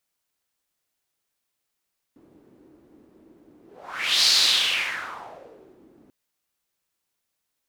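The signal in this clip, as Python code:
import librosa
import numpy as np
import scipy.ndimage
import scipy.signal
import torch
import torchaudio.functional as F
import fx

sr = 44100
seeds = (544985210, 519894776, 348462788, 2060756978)

y = fx.whoosh(sr, seeds[0], length_s=3.94, peak_s=2.11, rise_s=0.7, fall_s=1.69, ends_hz=310.0, peak_hz=4400.0, q=3.9, swell_db=36.0)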